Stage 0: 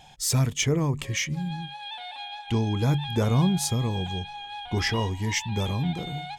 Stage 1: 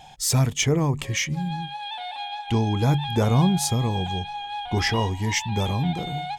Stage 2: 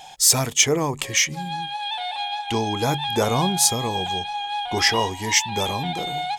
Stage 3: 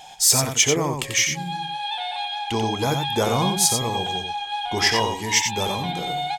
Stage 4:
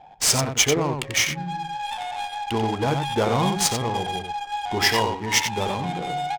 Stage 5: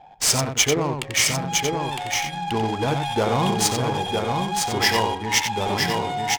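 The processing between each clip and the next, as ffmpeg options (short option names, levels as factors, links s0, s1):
-af "equalizer=f=780:w=3.1:g=5,volume=1.33"
-af "bass=f=250:g=-13,treble=f=4000:g=5,volume=1.68"
-af "aecho=1:1:90:0.501,volume=0.891"
-af "adynamicsmooth=sensitivity=3:basefreq=610"
-af "aecho=1:1:959:0.631"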